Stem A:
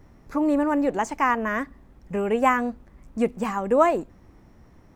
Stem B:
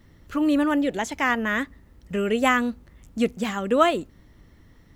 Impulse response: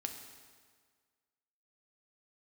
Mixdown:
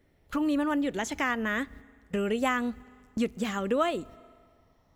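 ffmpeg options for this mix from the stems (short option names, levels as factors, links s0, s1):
-filter_complex "[0:a]highpass=f=470:p=1,alimiter=limit=0.168:level=0:latency=1:release=244,asplit=2[s0][s1];[s1]afreqshift=0.48[s2];[s0][s2]amix=inputs=2:normalize=1,volume=0.447,asplit=2[s3][s4];[1:a]volume=1.19,asplit=2[s5][s6];[s6]volume=0.1[s7];[s4]apad=whole_len=218543[s8];[s5][s8]sidechaingate=range=0.0794:threshold=0.00126:ratio=16:detection=peak[s9];[2:a]atrim=start_sample=2205[s10];[s7][s10]afir=irnorm=-1:irlink=0[s11];[s3][s9][s11]amix=inputs=3:normalize=0,acompressor=threshold=0.0282:ratio=2"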